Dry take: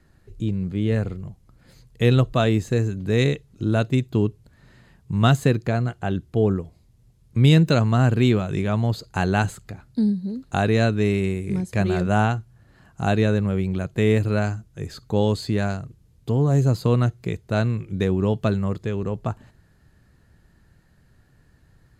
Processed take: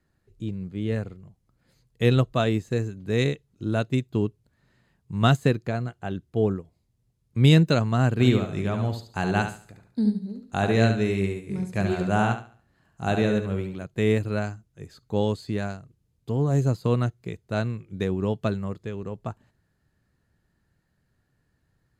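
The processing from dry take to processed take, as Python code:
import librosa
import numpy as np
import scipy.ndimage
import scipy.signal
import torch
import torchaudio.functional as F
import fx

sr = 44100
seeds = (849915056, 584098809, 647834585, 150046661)

y = fx.echo_feedback(x, sr, ms=71, feedback_pct=38, wet_db=-6.0, at=(8.19, 13.82), fade=0.02)
y = fx.low_shelf(y, sr, hz=66.0, db=-7.0)
y = fx.upward_expand(y, sr, threshold_db=-36.0, expansion=1.5)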